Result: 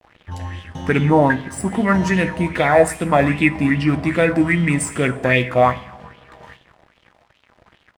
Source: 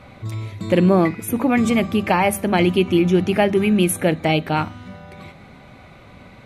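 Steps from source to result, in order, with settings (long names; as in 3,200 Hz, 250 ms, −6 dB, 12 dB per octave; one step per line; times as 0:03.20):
speed change −19%
dead-zone distortion −39.5 dBFS
double-tracking delay 16 ms −13.5 dB
coupled-rooms reverb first 0.81 s, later 2.5 s, from −24 dB, DRR 9.5 dB
auto-filter bell 2.5 Hz 650–3,300 Hz +12 dB
level −1 dB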